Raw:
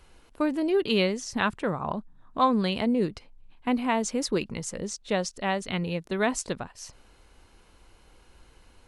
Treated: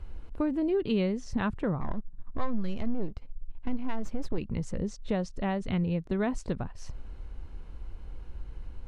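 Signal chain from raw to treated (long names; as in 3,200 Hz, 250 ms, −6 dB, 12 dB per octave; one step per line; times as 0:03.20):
0:01.80–0:04.38: gain on one half-wave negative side −12 dB
RIAA equalisation playback
downward compressor 2 to 1, threshold −31 dBFS, peak gain reduction 12 dB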